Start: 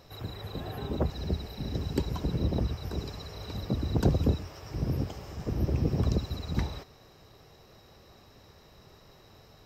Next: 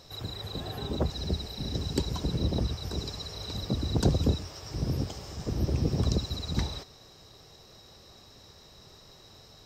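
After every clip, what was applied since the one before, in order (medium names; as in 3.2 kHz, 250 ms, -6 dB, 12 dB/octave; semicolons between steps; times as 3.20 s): high-order bell 5.7 kHz +8 dB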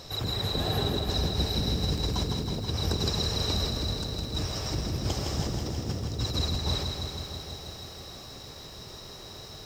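compressor with a negative ratio -35 dBFS, ratio -1; bit-crushed delay 161 ms, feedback 80%, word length 10-bit, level -6 dB; trim +3.5 dB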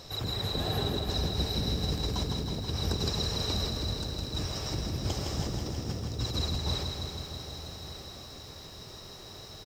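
delay 1190 ms -14.5 dB; trim -2.5 dB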